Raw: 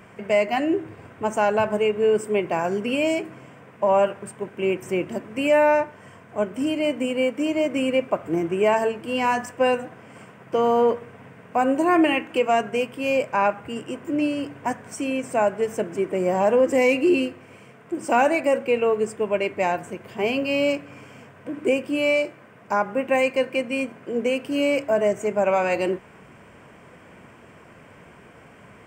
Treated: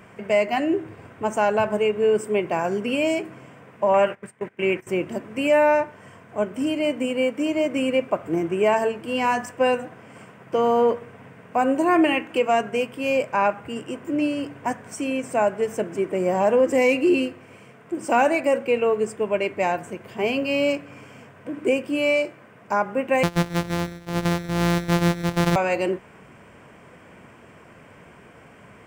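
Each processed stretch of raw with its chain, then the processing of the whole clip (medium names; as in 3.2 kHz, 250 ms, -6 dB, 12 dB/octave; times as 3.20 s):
3.94–4.87 s: gate -36 dBFS, range -17 dB + peaking EQ 2 kHz +8.5 dB 0.78 oct
23.23–25.56 s: sorted samples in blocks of 256 samples + treble shelf 7 kHz -7.5 dB + delay 133 ms -16 dB
whole clip: none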